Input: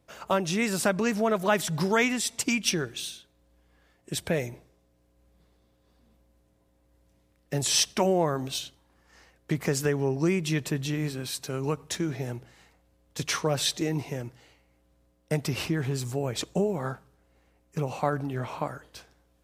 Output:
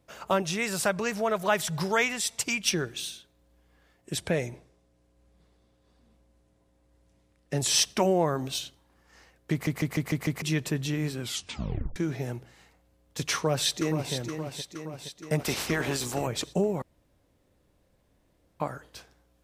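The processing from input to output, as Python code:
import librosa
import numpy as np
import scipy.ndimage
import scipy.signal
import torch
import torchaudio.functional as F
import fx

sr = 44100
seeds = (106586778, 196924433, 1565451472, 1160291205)

y = fx.peak_eq(x, sr, hz=270.0, db=-11.0, octaves=0.77, at=(0.42, 2.74))
y = fx.lowpass(y, sr, hz=11000.0, slope=24, at=(4.17, 7.61))
y = fx.echo_throw(y, sr, start_s=13.34, length_s=0.8, ms=470, feedback_pct=65, wet_db=-8.0)
y = fx.spec_clip(y, sr, under_db=18, at=(15.39, 16.26), fade=0.02)
y = fx.edit(y, sr, fx.stutter_over(start_s=9.52, slice_s=0.15, count=6),
    fx.tape_stop(start_s=11.2, length_s=0.76),
    fx.room_tone_fill(start_s=16.82, length_s=1.78), tone=tone)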